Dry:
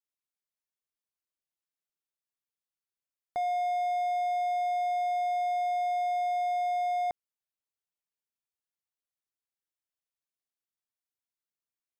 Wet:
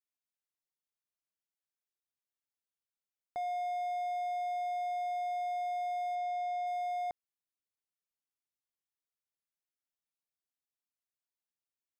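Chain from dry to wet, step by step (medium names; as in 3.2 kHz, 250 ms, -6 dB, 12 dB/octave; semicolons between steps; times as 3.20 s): 6.15–6.67 s: Bessel low-pass 6.2 kHz, order 2; trim -6 dB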